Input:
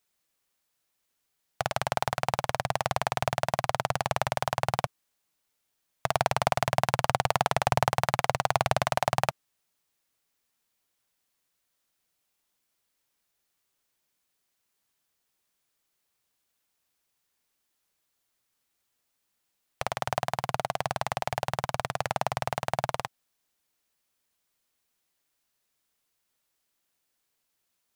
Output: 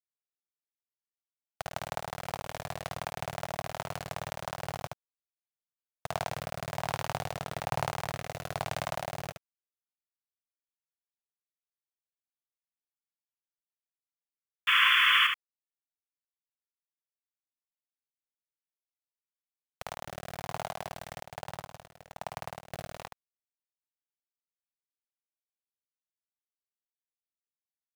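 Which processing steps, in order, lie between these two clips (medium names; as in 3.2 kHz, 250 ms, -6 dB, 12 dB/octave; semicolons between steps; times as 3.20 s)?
rotary cabinet horn 5.5 Hz, later 1.1 Hz, at 5.43 s; 14.67–15.27 s: painted sound noise 1–3.5 kHz -17 dBFS; bit crusher 6-bit; on a send: delay 73 ms -6 dB; 21.23–22.72 s: on the sum: upward expansion 2.5:1, over -38 dBFS; trim -6.5 dB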